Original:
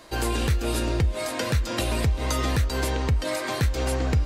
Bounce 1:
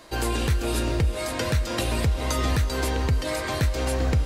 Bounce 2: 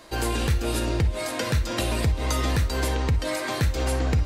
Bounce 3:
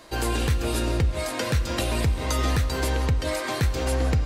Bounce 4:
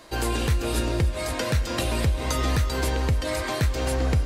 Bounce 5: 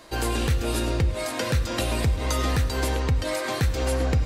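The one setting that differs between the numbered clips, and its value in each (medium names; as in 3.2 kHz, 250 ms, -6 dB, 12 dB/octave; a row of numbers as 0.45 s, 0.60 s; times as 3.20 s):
gated-style reverb, gate: 480 ms, 80 ms, 200 ms, 320 ms, 130 ms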